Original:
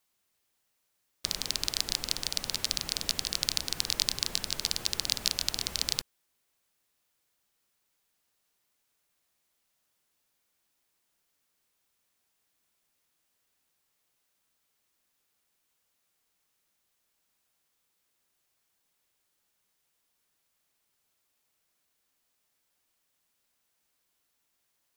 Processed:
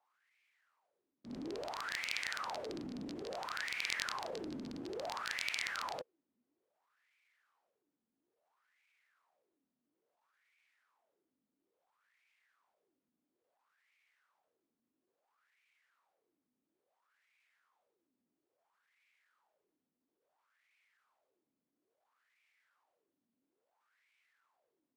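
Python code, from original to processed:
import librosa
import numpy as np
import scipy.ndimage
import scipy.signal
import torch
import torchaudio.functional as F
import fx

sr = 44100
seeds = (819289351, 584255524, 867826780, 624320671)

y = fx.wah_lfo(x, sr, hz=0.59, low_hz=240.0, high_hz=2300.0, q=7.6)
y = fx.transient(y, sr, attack_db=-11, sustain_db=1)
y = F.gain(torch.from_numpy(y), 17.0).numpy()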